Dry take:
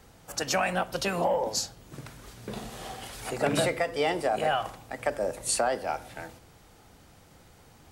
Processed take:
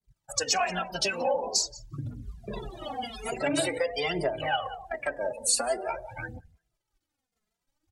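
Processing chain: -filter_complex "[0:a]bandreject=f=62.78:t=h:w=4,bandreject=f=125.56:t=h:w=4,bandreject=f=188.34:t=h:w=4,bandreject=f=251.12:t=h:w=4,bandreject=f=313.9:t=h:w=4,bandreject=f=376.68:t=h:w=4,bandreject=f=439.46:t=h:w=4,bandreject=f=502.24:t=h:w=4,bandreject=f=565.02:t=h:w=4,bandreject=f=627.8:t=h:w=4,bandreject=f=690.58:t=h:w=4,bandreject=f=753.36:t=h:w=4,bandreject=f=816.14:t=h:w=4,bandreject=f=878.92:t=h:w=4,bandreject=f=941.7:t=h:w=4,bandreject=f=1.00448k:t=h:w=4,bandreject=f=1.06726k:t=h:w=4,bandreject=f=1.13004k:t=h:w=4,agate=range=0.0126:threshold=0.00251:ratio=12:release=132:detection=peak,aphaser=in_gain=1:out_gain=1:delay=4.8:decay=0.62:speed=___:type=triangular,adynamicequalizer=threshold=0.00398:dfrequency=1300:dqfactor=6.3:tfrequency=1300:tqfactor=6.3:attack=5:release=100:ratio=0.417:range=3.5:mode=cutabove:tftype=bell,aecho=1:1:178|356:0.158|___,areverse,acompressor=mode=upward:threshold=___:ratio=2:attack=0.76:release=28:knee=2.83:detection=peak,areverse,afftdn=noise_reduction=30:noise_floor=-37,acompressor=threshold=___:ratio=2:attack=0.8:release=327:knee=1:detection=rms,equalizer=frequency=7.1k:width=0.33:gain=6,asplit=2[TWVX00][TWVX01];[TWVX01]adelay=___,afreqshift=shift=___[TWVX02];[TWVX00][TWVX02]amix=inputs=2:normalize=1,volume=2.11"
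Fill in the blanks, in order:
0.47, 0.038, 0.00891, 0.0251, 2.5, -1.2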